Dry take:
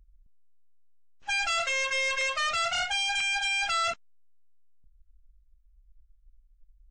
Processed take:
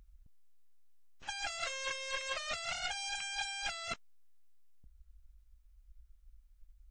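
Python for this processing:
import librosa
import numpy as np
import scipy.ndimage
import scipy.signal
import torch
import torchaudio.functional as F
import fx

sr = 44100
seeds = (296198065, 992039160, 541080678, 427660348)

y = fx.spec_clip(x, sr, under_db=12)
y = fx.over_compress(y, sr, threshold_db=-32.0, ratio=-0.5)
y = y * librosa.db_to_amplitude(-6.0)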